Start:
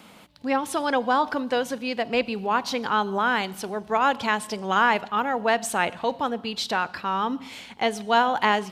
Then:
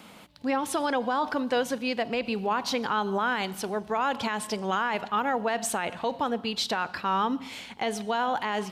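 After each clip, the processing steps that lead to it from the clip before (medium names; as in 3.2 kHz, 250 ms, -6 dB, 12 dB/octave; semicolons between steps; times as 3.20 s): peak limiter -17.5 dBFS, peak gain reduction 10.5 dB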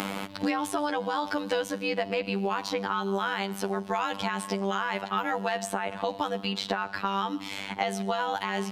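robot voice 98.3 Hz; three bands compressed up and down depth 100%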